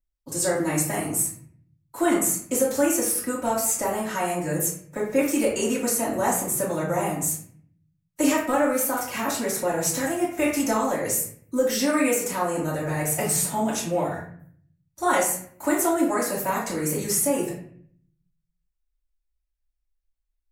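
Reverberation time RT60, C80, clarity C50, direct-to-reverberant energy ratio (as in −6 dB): 0.55 s, 8.0 dB, 4.5 dB, −8.5 dB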